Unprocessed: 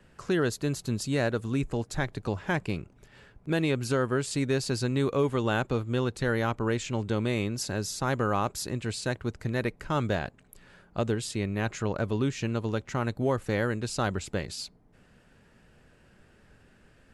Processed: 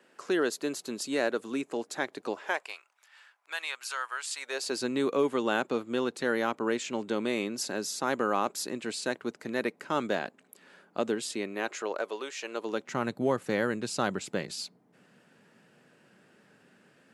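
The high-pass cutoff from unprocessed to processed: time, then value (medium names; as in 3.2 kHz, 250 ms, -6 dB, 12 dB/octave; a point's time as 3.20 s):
high-pass 24 dB/octave
2.31 s 270 Hz
2.80 s 920 Hz
4.36 s 920 Hz
4.82 s 220 Hz
11.27 s 220 Hz
12.37 s 530 Hz
12.98 s 160 Hz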